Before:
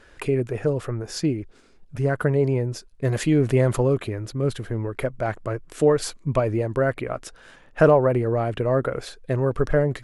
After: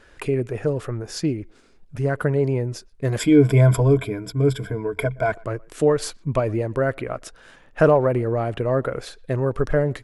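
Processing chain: 3.19–5.32 s: rippled EQ curve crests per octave 1.7, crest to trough 16 dB; speakerphone echo 120 ms, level -26 dB

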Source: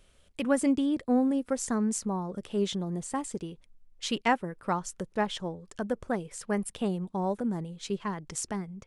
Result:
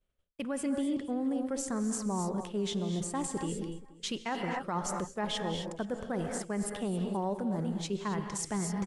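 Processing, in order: gated-style reverb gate 290 ms rising, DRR 8 dB; reverse; compression 5:1, threshold -36 dBFS, peak gain reduction 15 dB; reverse; peak limiter -31 dBFS, peak gain reduction 6.5 dB; expander -45 dBFS; on a send: delay 476 ms -21 dB; on the sum: tape noise reduction on one side only decoder only; trim +6.5 dB

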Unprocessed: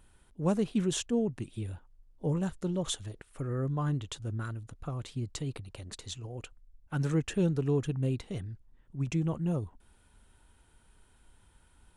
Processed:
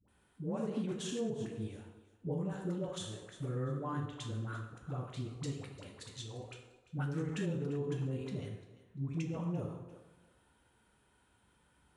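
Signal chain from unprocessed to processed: thinning echo 346 ms, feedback 23%, high-pass 420 Hz, level -17 dB; plate-style reverb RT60 0.91 s, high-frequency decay 0.75×, DRR 2 dB; peak limiter -24.5 dBFS, peak gain reduction 11 dB; high-pass 100 Hz 12 dB/octave; treble shelf 4.5 kHz -6.5 dB; phase dispersion highs, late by 84 ms, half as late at 500 Hz; trim -4 dB

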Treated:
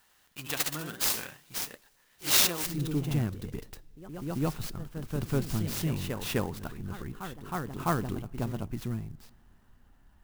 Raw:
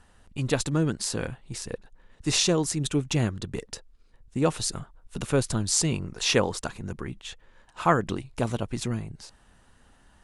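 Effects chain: peaking EQ 510 Hz -6 dB 0.49 oct; ever faster or slower copies 101 ms, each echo +1 st, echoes 3, each echo -6 dB; tilt EQ +4 dB/octave, from 2.65 s -1.5 dB/octave; two-slope reverb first 0.27 s, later 3 s, from -18 dB, DRR 19.5 dB; sampling jitter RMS 0.036 ms; trim -7.5 dB

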